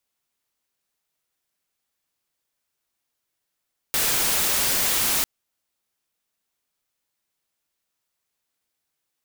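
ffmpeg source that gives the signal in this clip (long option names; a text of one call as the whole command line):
ffmpeg -f lavfi -i "anoisesrc=color=white:amplitude=0.138:duration=1.3:sample_rate=44100:seed=1" out.wav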